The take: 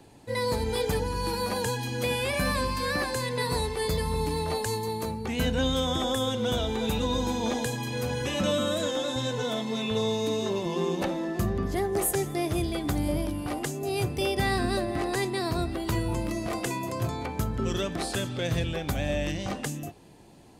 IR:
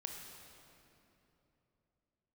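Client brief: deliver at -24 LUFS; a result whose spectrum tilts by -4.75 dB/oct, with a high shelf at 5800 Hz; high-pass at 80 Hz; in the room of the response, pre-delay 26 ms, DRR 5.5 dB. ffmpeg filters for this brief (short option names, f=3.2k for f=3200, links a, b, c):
-filter_complex "[0:a]highpass=80,highshelf=f=5.8k:g=-8.5,asplit=2[a][b];[1:a]atrim=start_sample=2205,adelay=26[c];[b][c]afir=irnorm=-1:irlink=0,volume=-3.5dB[d];[a][d]amix=inputs=2:normalize=0,volume=4.5dB"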